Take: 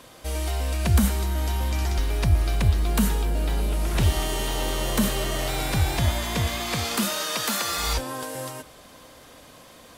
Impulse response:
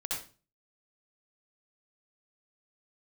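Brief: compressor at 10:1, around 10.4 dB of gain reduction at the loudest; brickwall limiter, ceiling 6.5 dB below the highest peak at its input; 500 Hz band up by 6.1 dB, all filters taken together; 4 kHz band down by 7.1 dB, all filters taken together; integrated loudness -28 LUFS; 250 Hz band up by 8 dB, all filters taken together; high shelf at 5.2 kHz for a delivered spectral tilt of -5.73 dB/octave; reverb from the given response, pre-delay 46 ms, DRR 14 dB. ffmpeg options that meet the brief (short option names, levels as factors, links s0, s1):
-filter_complex "[0:a]equalizer=f=250:t=o:g=9,equalizer=f=500:t=o:g=5.5,equalizer=f=4000:t=o:g=-7.5,highshelf=f=5200:g=-4.5,acompressor=threshold=0.1:ratio=10,alimiter=limit=0.126:level=0:latency=1,asplit=2[s0][s1];[1:a]atrim=start_sample=2205,adelay=46[s2];[s1][s2]afir=irnorm=-1:irlink=0,volume=0.133[s3];[s0][s3]amix=inputs=2:normalize=0"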